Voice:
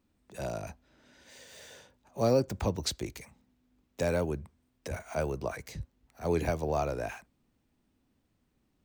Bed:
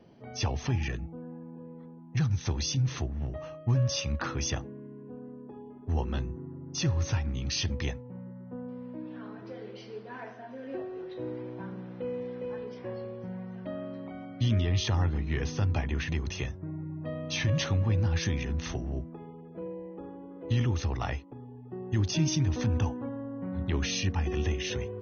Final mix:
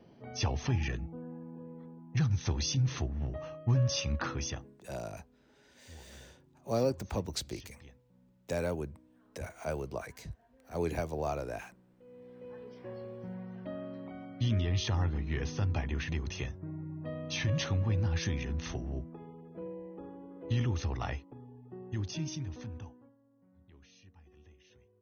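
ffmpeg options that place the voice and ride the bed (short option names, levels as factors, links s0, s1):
-filter_complex "[0:a]adelay=4500,volume=0.631[s0];[1:a]volume=7.94,afade=t=out:st=4.23:d=0.58:silence=0.0841395,afade=t=in:st=12.04:d=1.21:silence=0.105925,afade=t=out:st=21.08:d=2.08:silence=0.0473151[s1];[s0][s1]amix=inputs=2:normalize=0"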